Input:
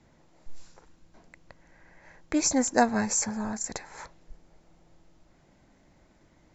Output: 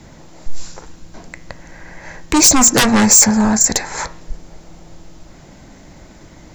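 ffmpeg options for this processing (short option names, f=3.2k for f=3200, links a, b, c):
-af "aeval=exprs='0.531*sin(PI/2*7.94*val(0)/0.531)':c=same,bass=f=250:g=2,treble=f=4k:g=5,bandreject=f=118.2:t=h:w=4,bandreject=f=236.4:t=h:w=4,bandreject=f=354.6:t=h:w=4,bandreject=f=472.8:t=h:w=4,bandreject=f=591:t=h:w=4,bandreject=f=709.2:t=h:w=4,bandreject=f=827.4:t=h:w=4,bandreject=f=945.6:t=h:w=4,bandreject=f=1.0638k:t=h:w=4,bandreject=f=1.182k:t=h:w=4,bandreject=f=1.3002k:t=h:w=4,bandreject=f=1.4184k:t=h:w=4,bandreject=f=1.5366k:t=h:w=4,bandreject=f=1.6548k:t=h:w=4,bandreject=f=1.773k:t=h:w=4,bandreject=f=1.8912k:t=h:w=4,bandreject=f=2.0094k:t=h:w=4,bandreject=f=2.1276k:t=h:w=4,bandreject=f=2.2458k:t=h:w=4,bandreject=f=2.364k:t=h:w=4,bandreject=f=2.4822k:t=h:w=4,bandreject=f=2.6004k:t=h:w=4,bandreject=f=2.7186k:t=h:w=4,volume=-3dB"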